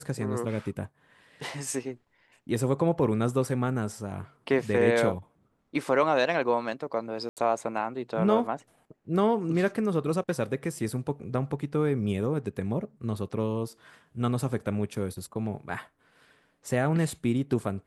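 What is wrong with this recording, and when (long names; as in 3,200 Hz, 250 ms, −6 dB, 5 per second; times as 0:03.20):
0:07.29–0:07.37: drop-out 78 ms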